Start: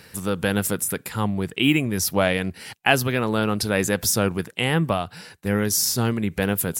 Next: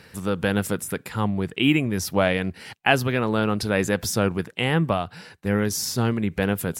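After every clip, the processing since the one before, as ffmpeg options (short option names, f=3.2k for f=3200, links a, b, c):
-af "highshelf=f=6.2k:g=-10.5"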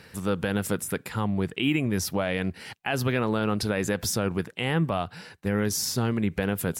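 -af "alimiter=limit=-13dB:level=0:latency=1:release=84,volume=-1dB"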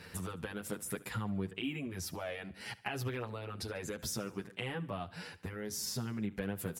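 -filter_complex "[0:a]acompressor=threshold=-34dB:ratio=6,aecho=1:1:72|144|216|288:0.1|0.053|0.0281|0.0149,asplit=2[a][b];[b]adelay=8.4,afreqshift=-0.58[c];[a][c]amix=inputs=2:normalize=1,volume=1.5dB"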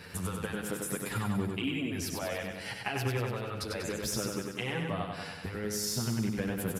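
-af "aresample=32000,aresample=44100,aecho=1:1:96|192|288|384|480|576|672|768:0.631|0.372|0.22|0.13|0.0765|0.0451|0.0266|0.0157,volume=3.5dB"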